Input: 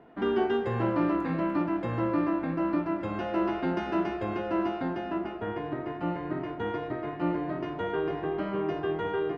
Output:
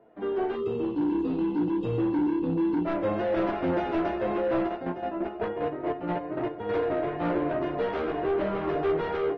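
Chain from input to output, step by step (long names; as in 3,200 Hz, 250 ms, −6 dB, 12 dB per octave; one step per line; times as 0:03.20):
0:00.55–0:02.85: time-frequency box erased 500–2,500 Hz
parametric band 540 Hz +10.5 dB 0.97 octaves
automatic gain control gain up to 16 dB
0:04.66–0:06.70: square-wave tremolo 6.8 Hz → 2.9 Hz, depth 65%, duty 35%
soft clipping −13.5 dBFS, distortion −11 dB
flanger 0.31 Hz, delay 8.8 ms, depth 7.8 ms, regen −18%
high-frequency loss of the air 70 metres
level −6 dB
AAC 32 kbit/s 48,000 Hz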